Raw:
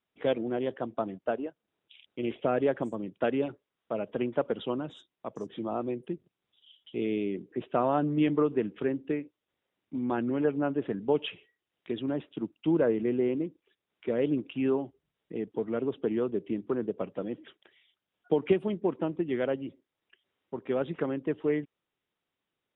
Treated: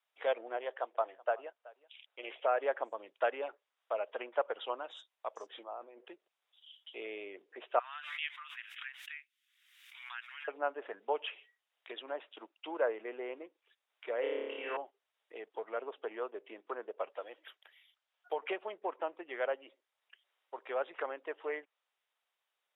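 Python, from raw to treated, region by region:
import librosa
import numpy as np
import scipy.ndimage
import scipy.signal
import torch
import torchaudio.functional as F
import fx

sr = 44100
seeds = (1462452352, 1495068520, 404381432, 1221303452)

y = fx.chain(x, sr, fx.bass_treble(bass_db=-11, treble_db=-7),
    fx.echo_single(ms=377, db=-21.5), at=(0.57, 2.61))
y = fx.chain(y, sr, fx.lowpass(hz=1900.0, slope=12),
    fx.over_compress(threshold_db=-40.0, ratio=-1.0), at=(5.63, 6.07))
y = fx.chain(y, sr, fx.cheby2_highpass(hz=510.0, order=4, stop_db=60),
    fx.pre_swell(db_per_s=51.0), at=(7.79, 10.48))
y = fx.chain(y, sr, fx.notch(hz=2500.0, q=17.0),
    fx.room_flutter(wall_m=4.9, rt60_s=1.4), at=(14.2, 14.77))
y = fx.chain(y, sr, fx.highpass(hz=450.0, slope=6),
    fx.resample_linear(factor=3), at=(17.12, 18.41))
y = fx.env_lowpass_down(y, sr, base_hz=2300.0, full_db=-27.0)
y = scipy.signal.sosfilt(scipy.signal.butter(4, 610.0, 'highpass', fs=sr, output='sos'), y)
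y = y * librosa.db_to_amplitude(1.5)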